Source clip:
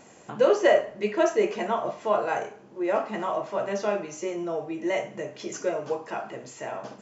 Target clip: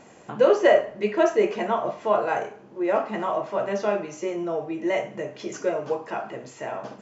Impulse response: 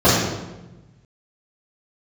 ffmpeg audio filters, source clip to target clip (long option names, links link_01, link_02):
-af "highshelf=frequency=6200:gain=-10,volume=2.5dB"